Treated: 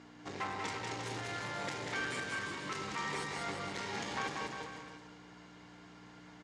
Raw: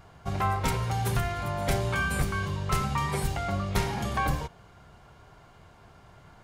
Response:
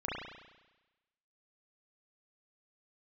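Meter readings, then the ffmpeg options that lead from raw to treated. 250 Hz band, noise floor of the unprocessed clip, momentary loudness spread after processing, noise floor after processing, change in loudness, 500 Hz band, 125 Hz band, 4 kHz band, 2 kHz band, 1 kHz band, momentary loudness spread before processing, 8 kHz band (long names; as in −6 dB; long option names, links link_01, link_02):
−10.5 dB, −54 dBFS, 18 LU, −56 dBFS, −10.0 dB, −9.0 dB, −19.5 dB, −4.0 dB, −5.0 dB, −9.5 dB, 3 LU, −8.0 dB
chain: -af "equalizer=frequency=630:width_type=o:width=2.9:gain=-12,acompressor=threshold=-32dB:ratio=6,aeval=exprs='val(0)+0.00398*(sin(2*PI*60*n/s)+sin(2*PI*2*60*n/s)/2+sin(2*PI*3*60*n/s)/3+sin(2*PI*4*60*n/s)/4+sin(2*PI*5*60*n/s)/5)':channel_layout=same,volume=35dB,asoftclip=hard,volume=-35dB,highpass=290,equalizer=frequency=290:width_type=q:width=4:gain=5,equalizer=frequency=460:width_type=q:width=4:gain=8,equalizer=frequency=890:width_type=q:width=4:gain=5,equalizer=frequency=1900:width_type=q:width=4:gain=6,lowpass=frequency=7100:width=0.5412,lowpass=frequency=7100:width=1.3066,aecho=1:1:190|351.5|488.8|605.5|704.6:0.631|0.398|0.251|0.158|0.1,volume=2dB"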